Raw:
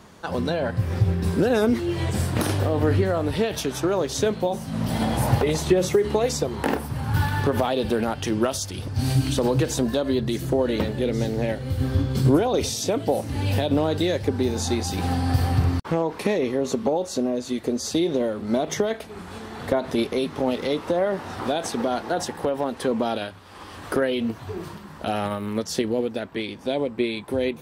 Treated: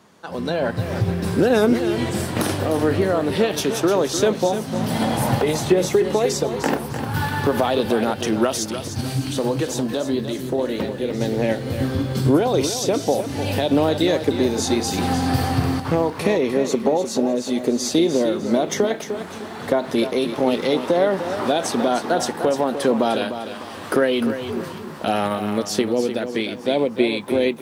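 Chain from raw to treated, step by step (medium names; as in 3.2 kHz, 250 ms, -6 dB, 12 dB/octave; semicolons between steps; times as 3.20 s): high-pass 140 Hz 12 dB/octave; level rider gain up to 11.5 dB; 9.01–11.21 s: flange 1.6 Hz, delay 8.6 ms, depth 9.3 ms, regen -68%; bit-crushed delay 302 ms, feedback 35%, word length 8-bit, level -9.5 dB; trim -4.5 dB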